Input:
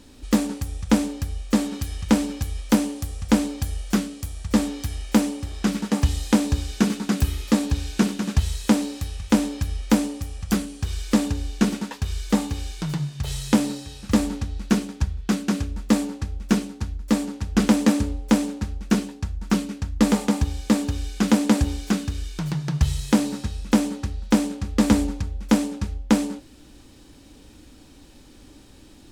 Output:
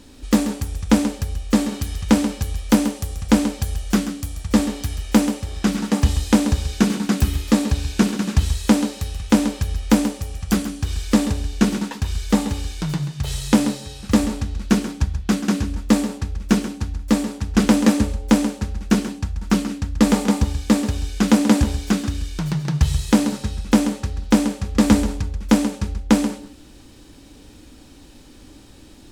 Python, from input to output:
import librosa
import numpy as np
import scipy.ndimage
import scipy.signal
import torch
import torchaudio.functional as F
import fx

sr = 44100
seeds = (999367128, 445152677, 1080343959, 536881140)

y = x + 10.0 ** (-11.5 / 20.0) * np.pad(x, (int(134 * sr / 1000.0), 0))[:len(x)]
y = y * 10.0 ** (3.0 / 20.0)